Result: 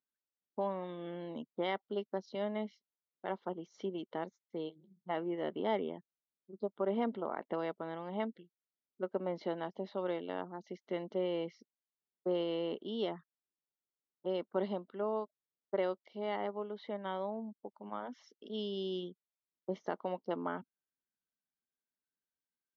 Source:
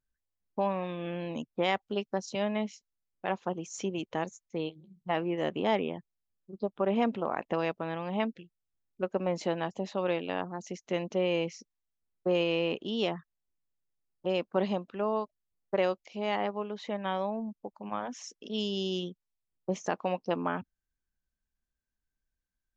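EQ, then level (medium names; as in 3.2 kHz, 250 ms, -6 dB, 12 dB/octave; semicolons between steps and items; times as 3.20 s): Butterworth band-stop 2.5 kHz, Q 6.1; distance through air 260 m; cabinet simulation 290–5300 Hz, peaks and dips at 310 Hz -3 dB, 520 Hz -5 dB, 750 Hz -6 dB, 1.1 kHz -6 dB, 1.7 kHz -7 dB, 2.6 kHz -9 dB; 0.0 dB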